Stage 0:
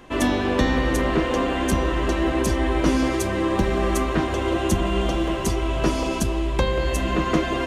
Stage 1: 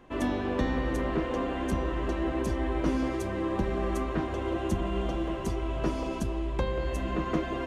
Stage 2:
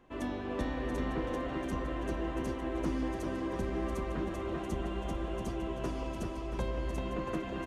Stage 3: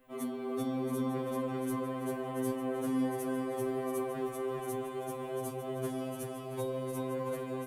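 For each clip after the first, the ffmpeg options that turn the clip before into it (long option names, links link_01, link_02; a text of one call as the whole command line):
ffmpeg -i in.wav -af "highshelf=frequency=2500:gain=-9,volume=-7.5dB" out.wav
ffmpeg -i in.wav -af "aecho=1:1:390|682.5|901.9|1066|1190:0.631|0.398|0.251|0.158|0.1,volume=-7.5dB" out.wav
ffmpeg -i in.wav -af "aexciter=amount=5.5:drive=7.5:freq=8600,afftfilt=real='re*2.45*eq(mod(b,6),0)':imag='im*2.45*eq(mod(b,6),0)':win_size=2048:overlap=0.75" out.wav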